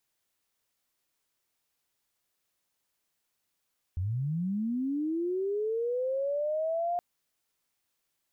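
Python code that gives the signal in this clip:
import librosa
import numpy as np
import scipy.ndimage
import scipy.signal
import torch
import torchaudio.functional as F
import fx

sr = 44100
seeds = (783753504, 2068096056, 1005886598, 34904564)

y = fx.chirp(sr, length_s=3.02, from_hz=83.0, to_hz=710.0, law='linear', from_db=-28.0, to_db=-27.0)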